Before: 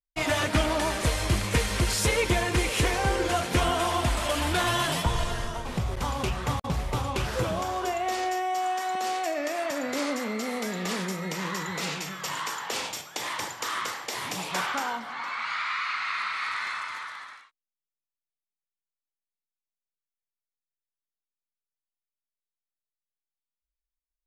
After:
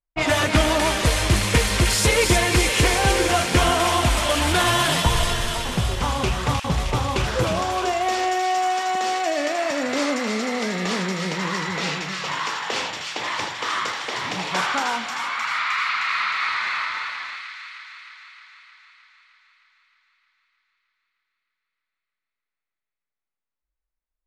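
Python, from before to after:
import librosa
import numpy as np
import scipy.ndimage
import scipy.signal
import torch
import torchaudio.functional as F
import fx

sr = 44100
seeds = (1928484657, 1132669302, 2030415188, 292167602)

y = fx.env_lowpass(x, sr, base_hz=1500.0, full_db=-22.0)
y = fx.echo_wet_highpass(y, sr, ms=309, feedback_pct=67, hz=2100.0, wet_db=-3.5)
y = y * librosa.db_to_amplitude(6.0)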